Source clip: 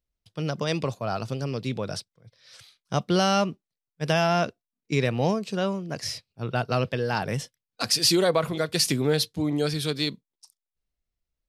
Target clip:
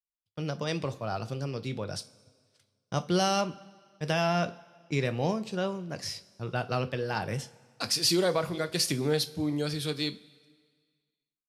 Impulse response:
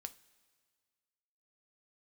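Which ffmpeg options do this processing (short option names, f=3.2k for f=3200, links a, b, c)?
-filter_complex "[0:a]agate=range=-25dB:threshold=-46dB:ratio=16:detection=peak[a];[1:a]atrim=start_sample=2205[b];[a][b]afir=irnorm=-1:irlink=0,asettb=1/sr,asplit=3[c][d][e];[c]atrim=end=1.844[f];[d]atrim=start=1.84:end=3.41,asetpts=PTS-STARTPTS,afade=t=in:d=0.004:c=qsin,afade=t=out:st=1.566:d=0.004:c=qsin,adynamicequalizer=threshold=0.00501:dfrequency=5400:dqfactor=0.7:tfrequency=5400:tqfactor=0.7:attack=5:release=100:ratio=0.375:range=3:mode=boostabove:tftype=highshelf[g];[e]atrim=start=3.406[h];[f][g]acrossfade=d=0.004:c1=hsin:c2=qsin[i];[i][h]acrossfade=d=0.004:c1=qsin:c2=hsin"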